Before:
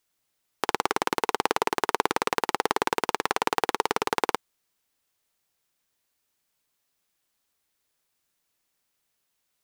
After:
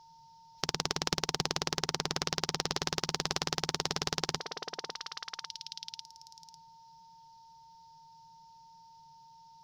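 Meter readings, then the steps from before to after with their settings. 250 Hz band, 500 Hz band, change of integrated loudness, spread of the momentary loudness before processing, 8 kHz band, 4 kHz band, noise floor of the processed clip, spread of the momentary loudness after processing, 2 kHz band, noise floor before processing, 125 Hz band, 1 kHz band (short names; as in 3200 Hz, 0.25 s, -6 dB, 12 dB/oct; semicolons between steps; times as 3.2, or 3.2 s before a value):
-6.0 dB, -10.0 dB, -7.0 dB, 3 LU, +1.0 dB, +2.0 dB, -58 dBFS, 11 LU, -8.5 dB, -77 dBFS, +6.5 dB, -12.5 dB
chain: spectral noise reduction 9 dB; EQ curve 100 Hz 0 dB, 160 Hz +13 dB, 240 Hz -13 dB, 370 Hz -11 dB, 660 Hz -17 dB, 2300 Hz -21 dB, 5400 Hz +2 dB, 8300 Hz -30 dB; in parallel at +2.5 dB: limiter -24 dBFS, peak gain reduction 9 dB; on the sum: whine 910 Hz -66 dBFS; level quantiser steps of 10 dB; on a send: delay with a stepping band-pass 0.549 s, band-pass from 590 Hz, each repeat 1.4 oct, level -7.5 dB; on the sum: spectral compressor 2:1; gain +8.5 dB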